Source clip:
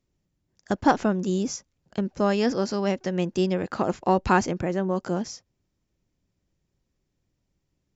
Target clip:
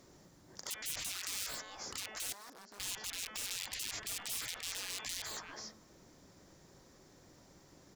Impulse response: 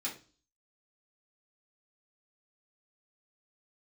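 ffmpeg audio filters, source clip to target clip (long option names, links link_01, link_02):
-filter_complex "[0:a]asplit=2[link_01][link_02];[link_02]adelay=320,highpass=300,lowpass=3400,asoftclip=type=hard:threshold=-17dB,volume=-19dB[link_03];[link_01][link_03]amix=inputs=2:normalize=0,aeval=exprs='(mod(12.6*val(0)+1,2)-1)/12.6':channel_layout=same,equalizer=frequency=2700:width_type=o:width=0.95:gain=-11,bandreject=frequency=216.3:width_type=h:width=4,bandreject=frequency=432.6:width_type=h:width=4,bandreject=frequency=648.9:width_type=h:width=4,bandreject=frequency=865.2:width_type=h:width=4,bandreject=frequency=1081.5:width_type=h:width=4,bandreject=frequency=1297.8:width_type=h:width=4,bandreject=frequency=1514.1:width_type=h:width=4,bandreject=frequency=1730.4:width_type=h:width=4,bandreject=frequency=1946.7:width_type=h:width=4,bandreject=frequency=2163:width_type=h:width=4,bandreject=frequency=2379.3:width_type=h:width=4,bandreject=frequency=2595.6:width_type=h:width=4,bandreject=frequency=2811.9:width_type=h:width=4,bandreject=frequency=3028.2:width_type=h:width=4,bandreject=frequency=3244.5:width_type=h:width=4,bandreject=frequency=3460.8:width_type=h:width=4,acompressor=threshold=-43dB:ratio=5,asettb=1/sr,asplit=3[link_04][link_05][link_06];[link_04]atrim=end=1.154[link_07];[link_05]atrim=start=1.15:end=1.55,asetpts=PTS-STARTPTS,afade=type=in:duration=0.004:curve=qsin,afade=type=out:start_time=0.396:duration=0.004:curve=qsin,lowshelf=frequency=320:gain=9[link_08];[link_06]atrim=start=1.546[link_09];[link_07][link_08]acrossfade=duration=0.004:curve1=hsin:curve2=qsin[link_10];[link_10][link_09]acrossfade=duration=0.004:curve1=qsin:curve2=hsin,asettb=1/sr,asplit=3[link_11][link_12][link_13];[link_11]atrim=end=2.324[link_14];[link_12]atrim=start=2.32:end=2.8,asetpts=PTS-STARTPTS,afade=type=in:duration=0.004:curve=qsin,afade=type=out:start_time=0.476:duration=0.004:curve=qsin,agate=range=-33dB:threshold=-24dB:ratio=3:detection=peak[link_15];[link_13]atrim=start=2.796[link_16];[link_14][link_15]acrossfade=duration=0.004:curve1=hsin:curve2=qsin[link_17];[link_17][link_16]acrossfade=duration=0.004:curve1=qsin:curve2=hsin,asettb=1/sr,asplit=3[link_18][link_19][link_20];[link_18]atrim=end=3.834[link_21];[link_19]atrim=start=3.83:end=5.05,asetpts=PTS-STARTPTS,afade=type=in:duration=0.004:curve=qsin,afade=type=out:start_time=1.216:duration=0.004:curve=qsin,aeval=exprs='clip(val(0),-1,0.00376)':channel_layout=same[link_22];[link_20]atrim=start=5.046[link_23];[link_21][link_22]acrossfade=duration=0.004:curve1=hsin:curve2=qsin[link_24];[link_24][link_23]acrossfade=duration=0.004:curve1=qsin:curve2=hsin,asplit=2[link_25][link_26];[link_26]highpass=frequency=720:poles=1,volume=23dB,asoftclip=type=tanh:threshold=-28.5dB[link_27];[link_25][link_27]amix=inputs=2:normalize=0,lowpass=frequency=5200:poles=1,volume=-6dB,afftfilt=real='re*lt(hypot(re,im),0.00891)':imag='im*lt(hypot(re,im),0.00891)':win_size=1024:overlap=0.75,volume=9dB"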